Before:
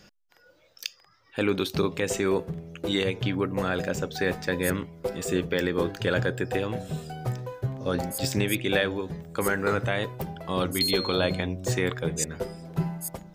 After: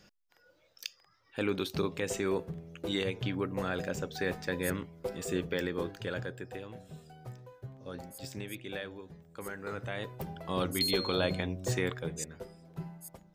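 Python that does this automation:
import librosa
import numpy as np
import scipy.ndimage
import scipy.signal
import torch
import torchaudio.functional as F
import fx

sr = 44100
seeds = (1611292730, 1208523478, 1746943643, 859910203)

y = fx.gain(x, sr, db=fx.line((5.54, -6.5), (6.63, -15.5), (9.59, -15.5), (10.33, -5.0), (11.8, -5.0), (12.47, -13.5)))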